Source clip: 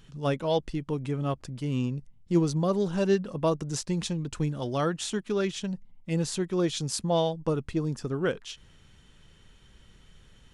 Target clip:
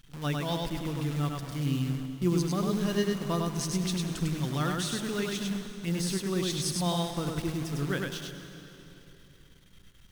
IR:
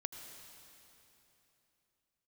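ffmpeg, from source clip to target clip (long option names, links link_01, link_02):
-filter_complex "[0:a]equalizer=frequency=530:width=1.1:gain=-11.5,bandreject=frequency=7000:width=7.5,bandreject=frequency=51.18:width_type=h:width=4,bandreject=frequency=102.36:width_type=h:width=4,bandreject=frequency=153.54:width_type=h:width=4,bandreject=frequency=204.72:width_type=h:width=4,acrusher=bits=8:dc=4:mix=0:aa=0.000001,asetrate=45938,aresample=44100,asplit=2[link_01][link_02];[1:a]atrim=start_sample=2205,adelay=101[link_03];[link_02][link_03]afir=irnorm=-1:irlink=0,volume=0dB[link_04];[link_01][link_04]amix=inputs=2:normalize=0"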